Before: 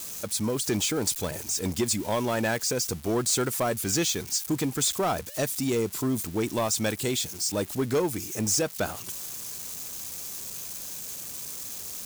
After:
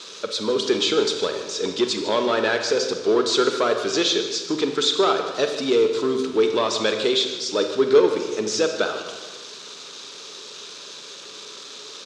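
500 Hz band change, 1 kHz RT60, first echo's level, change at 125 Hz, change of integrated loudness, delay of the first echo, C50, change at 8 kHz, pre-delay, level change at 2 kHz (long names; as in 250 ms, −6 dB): +10.0 dB, 1.3 s, −14.0 dB, −9.0 dB, +6.5 dB, 151 ms, 6.5 dB, −4.5 dB, 28 ms, +6.5 dB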